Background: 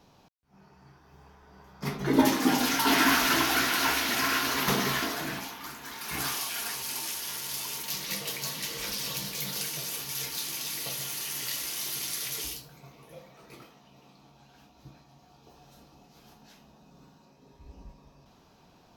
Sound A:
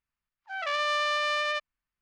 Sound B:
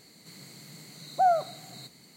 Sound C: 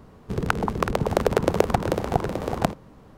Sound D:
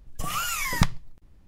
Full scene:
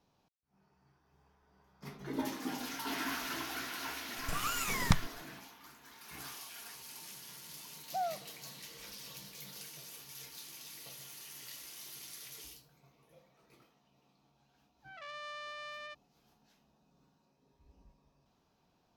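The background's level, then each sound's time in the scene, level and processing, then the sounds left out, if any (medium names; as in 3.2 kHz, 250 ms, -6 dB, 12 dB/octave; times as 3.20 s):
background -15 dB
4.09 s: add D -5.5 dB + crossover distortion -39.5 dBFS
6.75 s: add B -13.5 dB
14.35 s: add A -17.5 dB
not used: C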